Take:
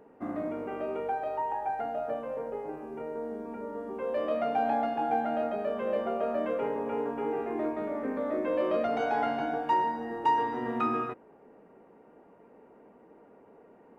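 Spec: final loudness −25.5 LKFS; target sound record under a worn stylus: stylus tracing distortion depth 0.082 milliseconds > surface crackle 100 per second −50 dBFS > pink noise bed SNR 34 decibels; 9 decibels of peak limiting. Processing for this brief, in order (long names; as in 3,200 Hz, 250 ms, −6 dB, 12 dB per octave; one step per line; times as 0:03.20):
brickwall limiter −25.5 dBFS
stylus tracing distortion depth 0.082 ms
surface crackle 100 per second −50 dBFS
pink noise bed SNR 34 dB
level +9 dB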